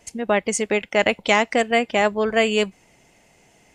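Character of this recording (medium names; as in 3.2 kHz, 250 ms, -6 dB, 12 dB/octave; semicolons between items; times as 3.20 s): noise floor -57 dBFS; spectral tilt -3.0 dB/octave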